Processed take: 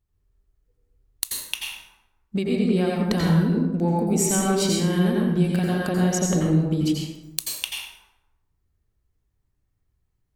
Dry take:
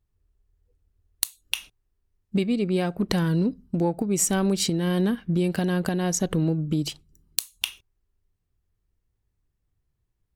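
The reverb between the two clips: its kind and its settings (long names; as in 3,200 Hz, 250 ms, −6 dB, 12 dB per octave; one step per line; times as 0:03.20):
dense smooth reverb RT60 1 s, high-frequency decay 0.55×, pre-delay 75 ms, DRR −3 dB
level −2 dB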